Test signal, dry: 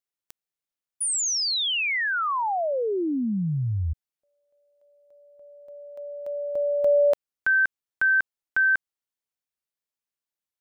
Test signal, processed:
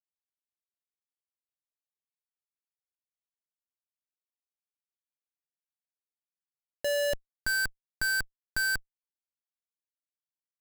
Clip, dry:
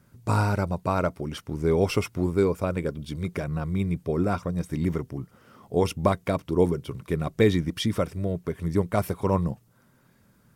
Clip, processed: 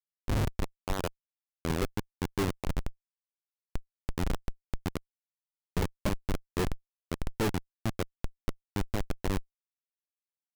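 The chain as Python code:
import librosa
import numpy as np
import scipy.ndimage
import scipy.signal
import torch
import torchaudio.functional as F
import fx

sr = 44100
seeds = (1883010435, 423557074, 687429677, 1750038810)

y = fx.freq_compress(x, sr, knee_hz=2100.0, ratio=1.5)
y = fx.schmitt(y, sr, flips_db=-18.0)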